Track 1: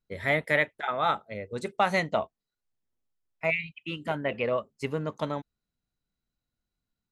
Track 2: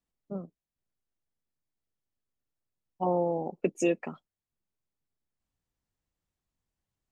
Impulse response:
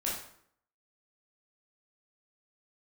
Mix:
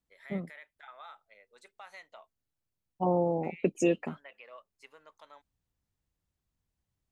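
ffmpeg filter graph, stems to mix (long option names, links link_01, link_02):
-filter_complex "[0:a]highpass=880,alimiter=limit=-23dB:level=0:latency=1:release=127,volume=-15.5dB[link_01];[1:a]equalizer=frequency=76:width=0.45:gain=7,volume=-1dB[link_02];[link_01][link_02]amix=inputs=2:normalize=0"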